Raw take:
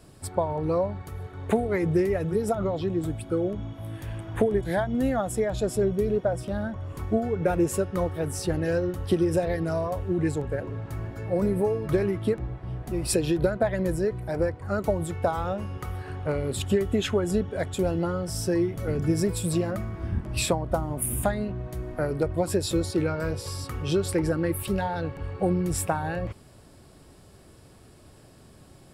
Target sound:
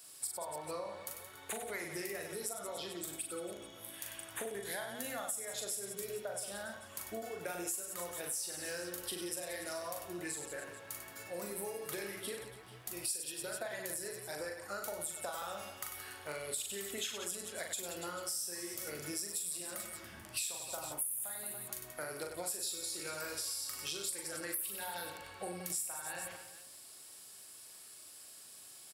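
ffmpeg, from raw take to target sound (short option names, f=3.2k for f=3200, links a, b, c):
-af "aderivative,aecho=1:1:40|96|174.4|284.2|437.8:0.631|0.398|0.251|0.158|0.1,acompressor=threshold=-44dB:ratio=6,volume=7dB"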